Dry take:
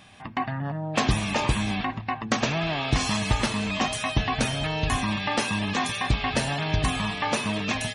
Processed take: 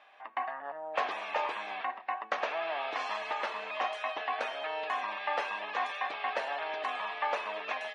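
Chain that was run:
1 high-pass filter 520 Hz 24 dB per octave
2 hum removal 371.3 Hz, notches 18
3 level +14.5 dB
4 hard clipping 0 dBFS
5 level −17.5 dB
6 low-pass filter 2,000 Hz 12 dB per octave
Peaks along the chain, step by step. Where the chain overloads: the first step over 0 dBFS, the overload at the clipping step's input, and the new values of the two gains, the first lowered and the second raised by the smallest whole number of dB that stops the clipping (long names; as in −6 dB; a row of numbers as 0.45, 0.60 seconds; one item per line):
−10.5, −10.5, +4.0, 0.0, −17.5, −17.5 dBFS
step 3, 4.0 dB
step 3 +10.5 dB, step 5 −13.5 dB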